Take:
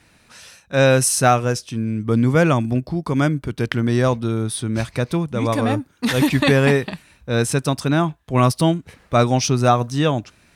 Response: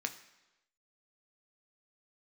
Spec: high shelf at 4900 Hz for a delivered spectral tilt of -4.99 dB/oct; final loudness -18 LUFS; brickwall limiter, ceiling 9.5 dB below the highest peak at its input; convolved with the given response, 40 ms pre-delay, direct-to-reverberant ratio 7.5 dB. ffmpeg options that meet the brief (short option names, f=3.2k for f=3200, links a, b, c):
-filter_complex "[0:a]highshelf=f=4.9k:g=4.5,alimiter=limit=-12dB:level=0:latency=1,asplit=2[a][b];[1:a]atrim=start_sample=2205,adelay=40[c];[b][c]afir=irnorm=-1:irlink=0,volume=-9.5dB[d];[a][d]amix=inputs=2:normalize=0,volume=4dB"